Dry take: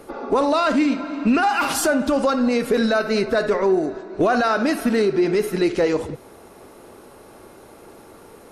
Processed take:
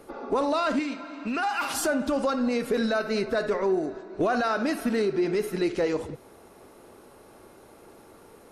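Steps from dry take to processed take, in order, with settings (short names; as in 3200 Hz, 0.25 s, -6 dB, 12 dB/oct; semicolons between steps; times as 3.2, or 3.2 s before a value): 0.79–1.74 low shelf 440 Hz -9 dB; gain -6.5 dB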